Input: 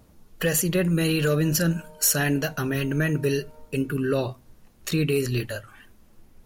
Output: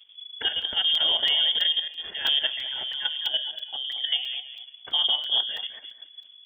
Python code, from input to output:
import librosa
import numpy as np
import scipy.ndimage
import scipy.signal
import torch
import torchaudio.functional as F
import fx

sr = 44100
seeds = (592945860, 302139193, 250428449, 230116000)

y = fx.low_shelf(x, sr, hz=130.0, db=7.5)
y = fx.echo_alternate(y, sr, ms=105, hz=1100.0, feedback_pct=52, wet_db=-3.0)
y = fx.transient(y, sr, attack_db=-8, sustain_db=-3, at=(2.55, 3.31))
y = fx.level_steps(y, sr, step_db=10)
y = fx.freq_invert(y, sr, carrier_hz=3400)
y = fx.buffer_crackle(y, sr, first_s=0.62, period_s=0.33, block=128, kind='zero')
y = y * librosa.db_to_amplitude(-2.0)